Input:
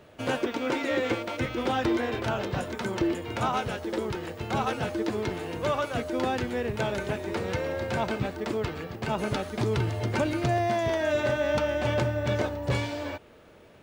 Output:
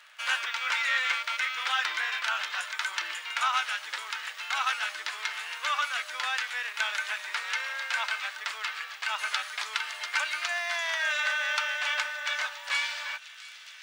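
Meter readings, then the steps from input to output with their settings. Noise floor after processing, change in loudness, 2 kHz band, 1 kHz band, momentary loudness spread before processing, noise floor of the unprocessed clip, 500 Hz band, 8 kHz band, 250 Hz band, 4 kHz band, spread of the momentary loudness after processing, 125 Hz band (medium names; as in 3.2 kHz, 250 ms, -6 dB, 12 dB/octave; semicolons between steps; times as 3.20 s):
-47 dBFS, -0.5 dB, +7.0 dB, -1.5 dB, 6 LU, -53 dBFS, -20.0 dB, +5.5 dB, under -40 dB, +7.5 dB, 7 LU, under -40 dB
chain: crackle 14 per s -41 dBFS; high-pass 1.3 kHz 24 dB/octave; treble shelf 10 kHz -9.5 dB; feedback echo behind a high-pass 702 ms, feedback 79%, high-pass 3 kHz, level -14.5 dB; trim +8 dB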